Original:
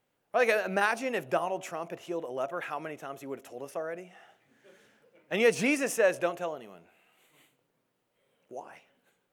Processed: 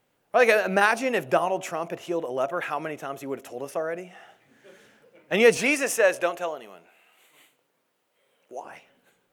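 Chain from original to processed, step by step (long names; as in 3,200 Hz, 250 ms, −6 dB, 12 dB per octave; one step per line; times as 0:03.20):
0:05.57–0:08.65: high-pass filter 500 Hz 6 dB per octave
level +6.5 dB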